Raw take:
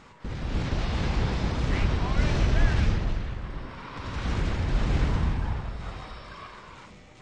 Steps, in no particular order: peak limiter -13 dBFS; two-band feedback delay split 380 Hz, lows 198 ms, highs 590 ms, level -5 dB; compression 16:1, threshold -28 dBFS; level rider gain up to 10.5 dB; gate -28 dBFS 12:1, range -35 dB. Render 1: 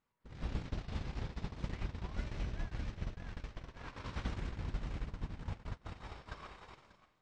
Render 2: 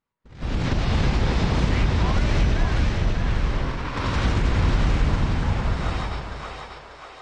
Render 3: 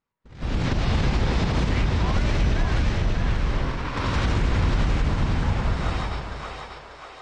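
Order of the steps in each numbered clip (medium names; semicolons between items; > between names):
two-band feedback delay > peak limiter > level rider > compression > gate; compression > peak limiter > level rider > gate > two-band feedback delay; compression > level rider > gate > two-band feedback delay > peak limiter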